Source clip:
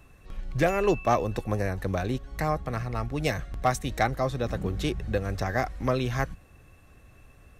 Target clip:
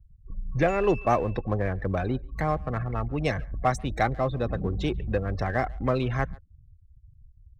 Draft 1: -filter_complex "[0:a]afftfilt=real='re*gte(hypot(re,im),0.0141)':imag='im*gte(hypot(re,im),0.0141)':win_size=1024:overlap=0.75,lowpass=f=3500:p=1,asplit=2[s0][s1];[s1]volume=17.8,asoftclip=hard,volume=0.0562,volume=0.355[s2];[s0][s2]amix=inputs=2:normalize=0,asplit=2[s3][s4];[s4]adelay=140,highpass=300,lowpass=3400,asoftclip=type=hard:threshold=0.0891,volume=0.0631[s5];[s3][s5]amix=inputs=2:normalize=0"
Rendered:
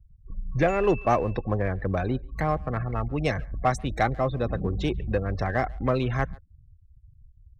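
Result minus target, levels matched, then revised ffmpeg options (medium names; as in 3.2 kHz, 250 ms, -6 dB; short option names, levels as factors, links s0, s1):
overload inside the chain: distortion -4 dB
-filter_complex "[0:a]afftfilt=real='re*gte(hypot(re,im),0.0141)':imag='im*gte(hypot(re,im),0.0141)':win_size=1024:overlap=0.75,lowpass=f=3500:p=1,asplit=2[s0][s1];[s1]volume=39.8,asoftclip=hard,volume=0.0251,volume=0.355[s2];[s0][s2]amix=inputs=2:normalize=0,asplit=2[s3][s4];[s4]adelay=140,highpass=300,lowpass=3400,asoftclip=type=hard:threshold=0.0891,volume=0.0631[s5];[s3][s5]amix=inputs=2:normalize=0"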